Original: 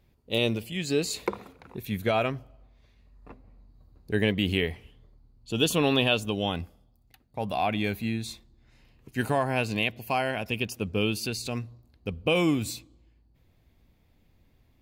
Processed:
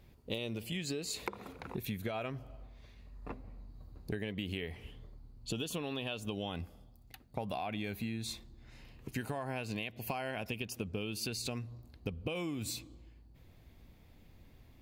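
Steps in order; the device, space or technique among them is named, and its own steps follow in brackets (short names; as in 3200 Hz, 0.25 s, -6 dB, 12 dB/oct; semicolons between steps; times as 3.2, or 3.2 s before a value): serial compression, leveller first (compressor 3:1, threshold -28 dBFS, peak gain reduction 7.5 dB; compressor 6:1, threshold -40 dBFS, peak gain reduction 14.5 dB); gain +4.5 dB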